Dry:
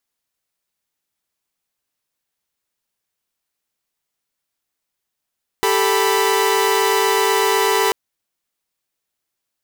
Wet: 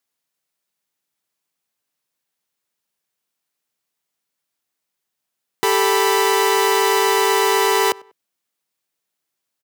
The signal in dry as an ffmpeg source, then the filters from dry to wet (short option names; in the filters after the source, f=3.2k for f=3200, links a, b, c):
-f lavfi -i "aevalsrc='0.15*((2*mod(392*t,1)-1)+(2*mod(440*t,1)-1)+(2*mod(987.77*t,1)-1))':d=2.29:s=44100"
-filter_complex "[0:a]highpass=f=110:w=0.5412,highpass=f=110:w=1.3066,asplit=2[a][b];[b]adelay=97,lowpass=f=2.5k:p=1,volume=-23dB,asplit=2[c][d];[d]adelay=97,lowpass=f=2.5k:p=1,volume=0.35[e];[a][c][e]amix=inputs=3:normalize=0"